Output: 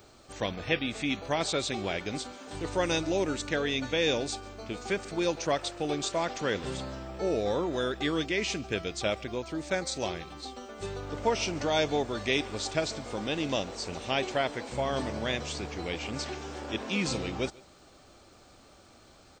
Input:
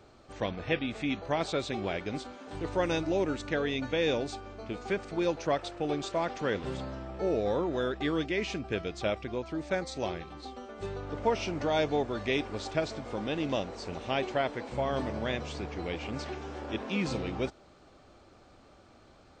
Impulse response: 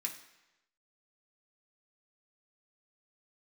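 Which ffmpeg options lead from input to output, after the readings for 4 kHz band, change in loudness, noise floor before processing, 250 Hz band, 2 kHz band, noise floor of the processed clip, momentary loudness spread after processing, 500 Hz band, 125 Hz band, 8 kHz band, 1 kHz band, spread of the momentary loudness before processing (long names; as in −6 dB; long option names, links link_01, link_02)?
+6.0 dB, +1.5 dB, −58 dBFS, 0.0 dB, +3.0 dB, −56 dBFS, 9 LU, +0.5 dB, 0.0 dB, +10.0 dB, +0.5 dB, 10 LU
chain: -filter_complex "[0:a]aemphasis=mode=production:type=75kf,asplit=2[link_01][link_02];[link_02]aecho=0:1:143:0.0631[link_03];[link_01][link_03]amix=inputs=2:normalize=0"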